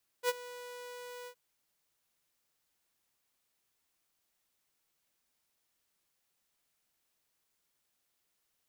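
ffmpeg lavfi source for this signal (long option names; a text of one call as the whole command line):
ffmpeg -f lavfi -i "aevalsrc='0.0708*(2*mod(491*t,1)-1)':duration=1.115:sample_rate=44100,afade=type=in:duration=0.059,afade=type=out:start_time=0.059:duration=0.033:silence=0.119,afade=type=out:start_time=1.04:duration=0.075" out.wav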